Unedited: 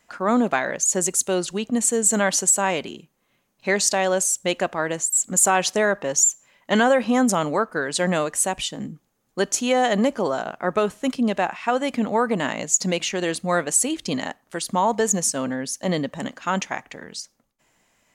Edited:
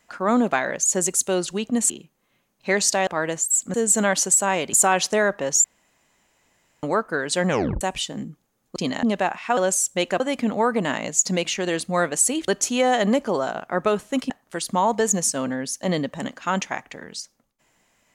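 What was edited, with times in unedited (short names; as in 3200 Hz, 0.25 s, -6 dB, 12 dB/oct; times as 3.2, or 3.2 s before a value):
1.9–2.89 move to 5.36
4.06–4.69 move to 11.75
6.27–7.46 room tone
8.12 tape stop 0.32 s
9.39–11.21 swap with 14.03–14.3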